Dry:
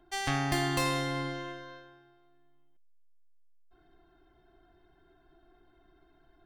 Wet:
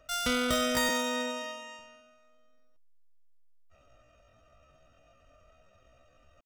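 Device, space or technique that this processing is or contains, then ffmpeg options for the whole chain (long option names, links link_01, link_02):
chipmunk voice: -filter_complex "[0:a]asettb=1/sr,asplit=3[link_01][link_02][link_03];[link_01]atrim=end=0.904[link_04];[link_02]atrim=start=0.9:end=1.8,asetpts=PTS-STARTPTS,afade=type=in:duration=0.004:curve=qsin,afade=type=out:start_time=0.896:duration=0.004:curve=qsin,highpass=frequency=110:width=0.5412,highpass=frequency=110:width=1.3066[link_05];[link_03]atrim=start=1.796[link_06];[link_04][link_05]acrossfade=duration=0.004:curve1=hsin:curve2=qsin[link_07];[link_07][link_06]acrossfade=duration=0.004:curve1=qsin:curve2=hsin,asetrate=78577,aresample=44100,atempo=0.561231,volume=1.5dB"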